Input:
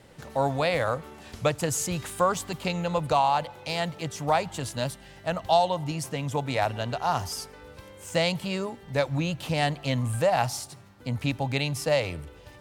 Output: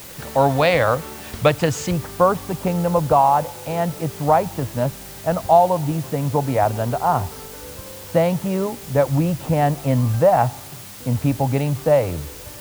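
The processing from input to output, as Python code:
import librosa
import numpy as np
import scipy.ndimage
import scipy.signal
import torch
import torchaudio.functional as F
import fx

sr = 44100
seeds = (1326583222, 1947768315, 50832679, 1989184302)

y = fx.lowpass(x, sr, hz=fx.steps((0.0, 4100.0), (1.91, 1100.0)), slope=12)
y = fx.quant_dither(y, sr, seeds[0], bits=8, dither='triangular')
y = y * 10.0 ** (9.0 / 20.0)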